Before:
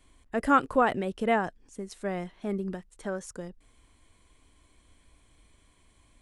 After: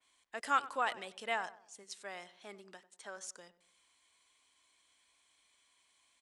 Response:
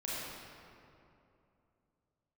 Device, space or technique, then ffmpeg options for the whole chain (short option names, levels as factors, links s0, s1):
piezo pickup straight into a mixer: -filter_complex "[0:a]lowpass=5200,aderivative,equalizer=f=860:w=1.3:g=4.5,asplit=3[s0][s1][s2];[s0]afade=t=out:st=1.83:d=0.02[s3];[s1]highpass=170,afade=t=in:st=1.83:d=0.02,afade=t=out:st=3.16:d=0.02[s4];[s2]afade=t=in:st=3.16:d=0.02[s5];[s3][s4][s5]amix=inputs=3:normalize=0,asplit=2[s6][s7];[s7]adelay=96,lowpass=f=1300:p=1,volume=0.178,asplit=2[s8][s9];[s9]adelay=96,lowpass=f=1300:p=1,volume=0.42,asplit=2[s10][s11];[s11]adelay=96,lowpass=f=1300:p=1,volume=0.42,asplit=2[s12][s13];[s13]adelay=96,lowpass=f=1300:p=1,volume=0.42[s14];[s6][s8][s10][s12][s14]amix=inputs=5:normalize=0,adynamicequalizer=threshold=0.00178:dfrequency=2800:dqfactor=0.7:tfrequency=2800:tqfactor=0.7:attack=5:release=100:ratio=0.375:range=2:mode=boostabove:tftype=highshelf,volume=1.78"